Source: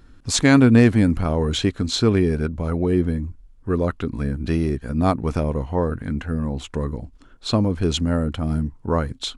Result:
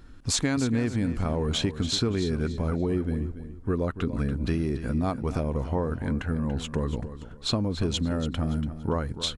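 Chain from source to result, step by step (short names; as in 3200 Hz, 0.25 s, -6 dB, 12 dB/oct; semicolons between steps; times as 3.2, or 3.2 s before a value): compressor 6:1, threshold -23 dBFS, peak gain reduction 14 dB; feedback echo 0.286 s, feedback 29%, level -12 dB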